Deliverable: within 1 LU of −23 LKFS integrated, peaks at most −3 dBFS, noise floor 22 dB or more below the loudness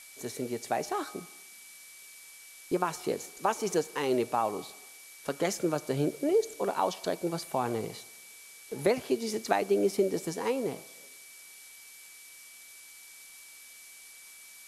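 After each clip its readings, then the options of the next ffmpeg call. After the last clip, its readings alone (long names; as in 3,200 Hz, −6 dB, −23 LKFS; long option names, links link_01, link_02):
interfering tone 2,300 Hz; level of the tone −54 dBFS; background noise floor −51 dBFS; target noise floor −53 dBFS; integrated loudness −31.0 LKFS; sample peak −9.5 dBFS; target loudness −23.0 LKFS
→ -af "bandreject=frequency=2300:width=30"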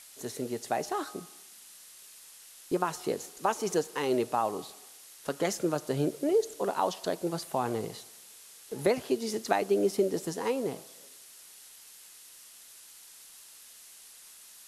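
interfering tone none found; background noise floor −52 dBFS; target noise floor −53 dBFS
→ -af "afftdn=noise_reduction=6:noise_floor=-52"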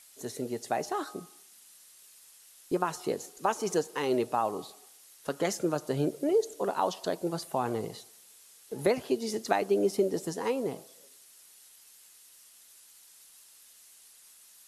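background noise floor −57 dBFS; integrated loudness −31.0 LKFS; sample peak −9.5 dBFS; target loudness −23.0 LKFS
→ -af "volume=8dB,alimiter=limit=-3dB:level=0:latency=1"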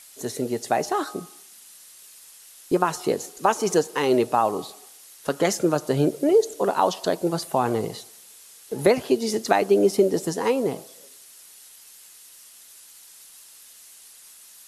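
integrated loudness −23.5 LKFS; sample peak −3.0 dBFS; background noise floor −49 dBFS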